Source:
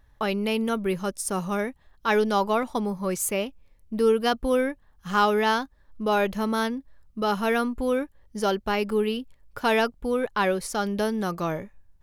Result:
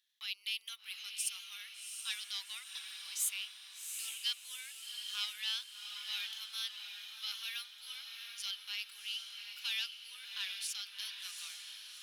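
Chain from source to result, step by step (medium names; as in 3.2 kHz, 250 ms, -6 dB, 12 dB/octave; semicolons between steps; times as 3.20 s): single-diode clipper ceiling -14.5 dBFS; ladder high-pass 2.8 kHz, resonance 45%; echo that smears into a reverb 754 ms, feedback 48%, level -5.5 dB; trim +3 dB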